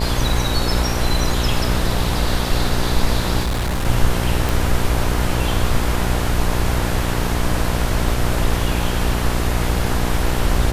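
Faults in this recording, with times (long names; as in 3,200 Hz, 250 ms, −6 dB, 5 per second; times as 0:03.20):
mains buzz 60 Hz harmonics 17 −22 dBFS
0:03.41–0:03.86: clipping −17 dBFS
0:04.49: click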